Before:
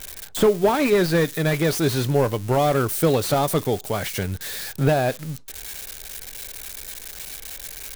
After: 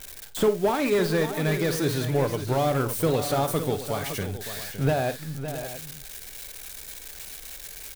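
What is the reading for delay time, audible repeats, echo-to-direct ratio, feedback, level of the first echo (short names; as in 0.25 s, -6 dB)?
51 ms, 3, -7.0 dB, no steady repeat, -13.5 dB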